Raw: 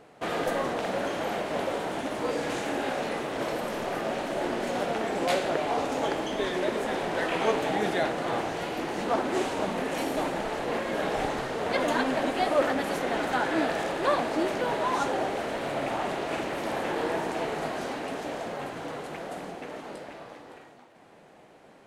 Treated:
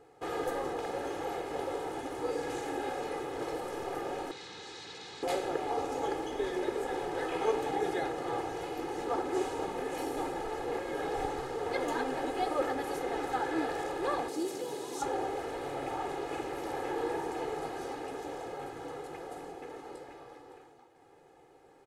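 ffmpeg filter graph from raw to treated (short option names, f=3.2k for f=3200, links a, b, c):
-filter_complex "[0:a]asettb=1/sr,asplit=3[a][b][c];[a]atrim=end=4.314[d];[b]atrim=start=4.31:end=5.23,asetpts=PTS-STARTPTS,afade=t=in:d=0.004:c=qsin,afade=t=out:st=0.916:d=0.004:c=qsin,aeval=exprs='0.0188*(abs(mod(val(0)/0.0188+3,4)-2)-1)':c=same,highpass=150,equalizer=f=190:t=q:w=4:g=8,equalizer=f=660:t=q:w=4:g=-5,equalizer=f=1.2k:t=q:w=4:g=-5,equalizer=f=3.9k:t=q:w=4:g=9,lowpass=f=7.4k:w=0.5412,lowpass=f=7.4k:w=1.3066[e];[c]atrim=start=5.226[f];[d][e]acrossfade=d=0.004:c1=hsin:c2=qsin[g];[g][f]acrossfade=d=0.004:c1=qsin:c2=hsin,asettb=1/sr,asplit=3[h][i][j];[h]atrim=end=14.284[k];[i]atrim=start=14.28:end=15.02,asetpts=PTS-STARTPTS,afade=t=in:d=0.004:c=qsin,afade=t=out:st=0.736:d=0.004:c=qsin,highpass=160,bass=f=250:g=0,treble=f=4k:g=8,acrossover=split=470|3000[l][m][n];[m]acompressor=threshold=-40dB:ratio=4:attack=3.2:release=140:knee=2.83:detection=peak[o];[l][o][n]amix=inputs=3:normalize=0[p];[j]atrim=start=15.016[q];[k][p]acrossfade=d=0.004:c1=hsin:c2=qsin[r];[r][q]acrossfade=d=0.004:c1=qsin:c2=hsin,equalizer=f=2.7k:w=0.7:g=-6,aecho=1:1:2.4:0.78,volume=-6.5dB"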